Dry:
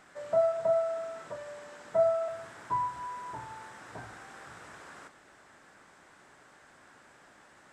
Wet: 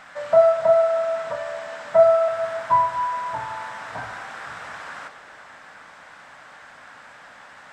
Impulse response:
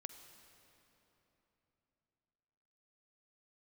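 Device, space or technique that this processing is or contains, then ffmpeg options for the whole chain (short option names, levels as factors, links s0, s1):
filtered reverb send: -filter_complex "[0:a]asplit=2[s0][s1];[s1]highpass=f=380:w=0.5412,highpass=f=380:w=1.3066,lowpass=5200[s2];[1:a]atrim=start_sample=2205[s3];[s2][s3]afir=irnorm=-1:irlink=0,volume=2.51[s4];[s0][s4]amix=inputs=2:normalize=0,volume=2"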